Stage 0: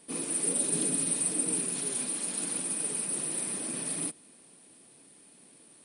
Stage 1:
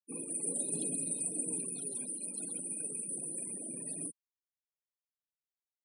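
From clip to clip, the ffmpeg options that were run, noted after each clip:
-af "afftfilt=real='re*gte(hypot(re,im),0.0158)':imag='im*gte(hypot(re,im),0.0158)':win_size=1024:overlap=0.75,volume=-6.5dB"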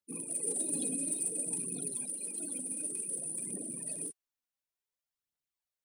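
-af "aphaser=in_gain=1:out_gain=1:delay=4.2:decay=0.53:speed=0.56:type=triangular"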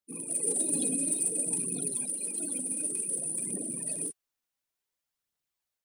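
-af "dynaudnorm=f=160:g=3:m=5dB"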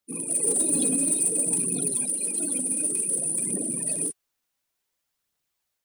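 -af "asoftclip=type=tanh:threshold=-21dB,volume=7dB"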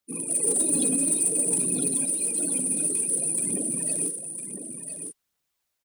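-af "aecho=1:1:1005:0.376"

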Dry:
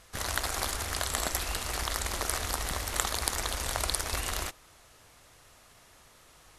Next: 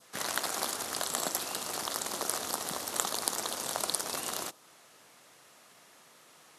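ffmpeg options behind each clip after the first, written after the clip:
-af "highpass=f=160:w=0.5412,highpass=f=160:w=1.3066,adynamicequalizer=threshold=0.00282:dfrequency=2100:dqfactor=1.4:tfrequency=2100:tqfactor=1.4:attack=5:release=100:ratio=0.375:range=4:mode=cutabove:tftype=bell"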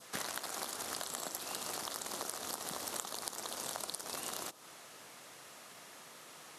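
-af "acompressor=threshold=-41dB:ratio=10,volume=4.5dB"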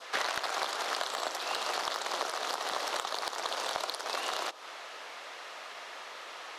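-filter_complex "[0:a]highpass=f=220:p=1,acrossover=split=390 4900:gain=0.0708 1 0.0891[a][b][c];[a][b][c]amix=inputs=3:normalize=0,aeval=exprs='0.0841*sin(PI/2*2*val(0)/0.0841)':c=same,volume=2dB"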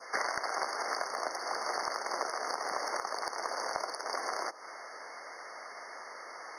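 -af "afftfilt=real='re*eq(mod(floor(b*sr/1024/2200),2),0)':imag='im*eq(mod(floor(b*sr/1024/2200),2),0)':win_size=1024:overlap=0.75"

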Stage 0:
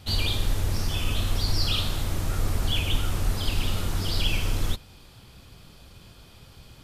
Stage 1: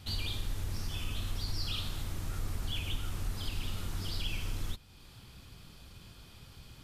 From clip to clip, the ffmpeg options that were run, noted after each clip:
-af "equalizer=f=570:w=1.2:g=-4.5,acompressor=threshold=-41dB:ratio=1.5,volume=-3dB"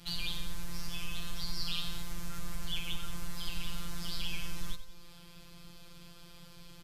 -filter_complex "[0:a]acrossover=split=310|580|5200[a][b][c][d];[b]aeval=exprs='(mod(1120*val(0)+1,2)-1)/1120':c=same[e];[a][e][c][d]amix=inputs=4:normalize=0,afftfilt=real='hypot(re,im)*cos(PI*b)':imag='0':win_size=1024:overlap=0.75,aecho=1:1:91|182|273|364|455:0.251|0.131|0.0679|0.0353|0.0184,volume=4dB"

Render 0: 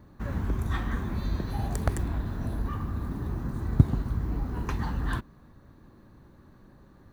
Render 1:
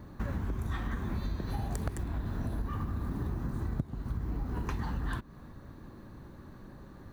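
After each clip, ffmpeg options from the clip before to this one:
-af "acompressor=threshold=-35dB:ratio=12,volume=5dB"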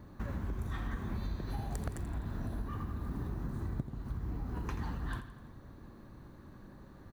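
-af "aecho=1:1:84|168|252|336|420|504:0.282|0.152|0.0822|0.0444|0.024|0.0129,volume=-4dB"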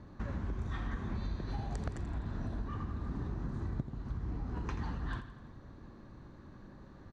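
-af "lowpass=f=6.8k:w=0.5412,lowpass=f=6.8k:w=1.3066"

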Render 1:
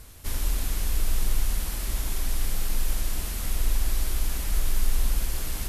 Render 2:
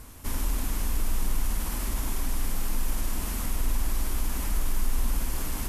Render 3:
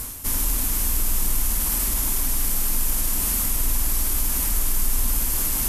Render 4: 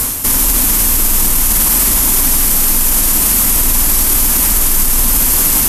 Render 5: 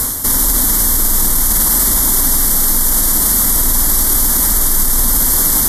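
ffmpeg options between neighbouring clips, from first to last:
-filter_complex "[0:a]equalizer=f=250:t=o:w=0.67:g=8,equalizer=f=1k:t=o:w=0.67:g=6,equalizer=f=4k:t=o:w=0.67:g=-4,asplit=2[a][b];[b]alimiter=limit=-22dB:level=0:latency=1,volume=1dB[c];[a][c]amix=inputs=2:normalize=0,volume=-6dB"
-af "areverse,acompressor=mode=upward:threshold=-26dB:ratio=2.5,areverse,crystalizer=i=2.5:c=0,volume=2dB"
-filter_complex "[0:a]acrossover=split=110[a][b];[b]acontrast=74[c];[a][c]amix=inputs=2:normalize=0,alimiter=level_in=11dB:limit=-1dB:release=50:level=0:latency=1,volume=-1dB"
-af "asuperstop=centerf=2600:order=4:qfactor=2.2,volume=-1dB"

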